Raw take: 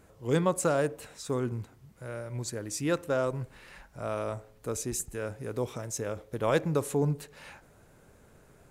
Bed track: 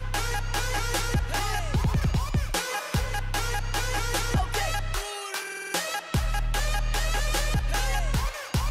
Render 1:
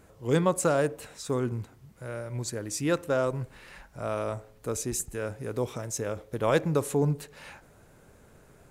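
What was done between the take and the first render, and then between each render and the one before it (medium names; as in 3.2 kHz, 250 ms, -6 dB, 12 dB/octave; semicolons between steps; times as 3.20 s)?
trim +2 dB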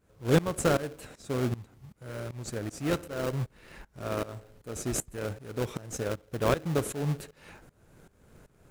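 tremolo saw up 2.6 Hz, depth 90%; in parallel at -4 dB: sample-rate reducer 1 kHz, jitter 20%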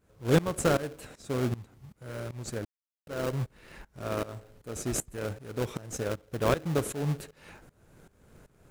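2.65–3.07 s: mute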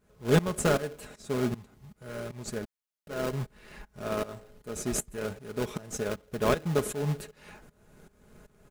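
comb 4.8 ms, depth 47%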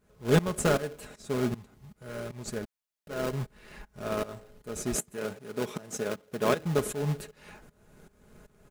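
4.95–6.60 s: high-pass 140 Hz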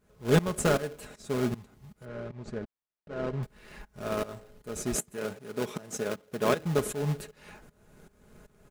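2.05–3.43 s: tape spacing loss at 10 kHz 25 dB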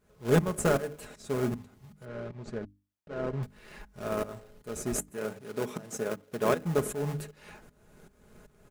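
dynamic bell 3.8 kHz, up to -6 dB, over -49 dBFS, Q 0.92; hum notches 50/100/150/200/250/300 Hz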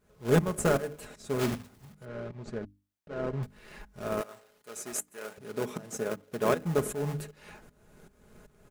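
1.39–1.97 s: block-companded coder 3-bit; 4.21–5.38 s: high-pass 1 kHz 6 dB/octave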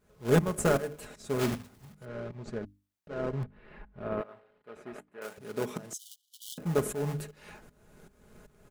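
3.43–5.22 s: distance through air 480 m; 5.93–6.58 s: brick-wall FIR high-pass 2.9 kHz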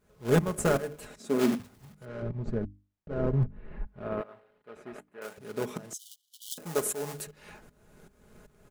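1.20–1.60 s: resonant high-pass 240 Hz, resonance Q 2.3; 2.22–3.87 s: tilt EQ -3 dB/octave; 6.51–7.27 s: tone controls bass -12 dB, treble +8 dB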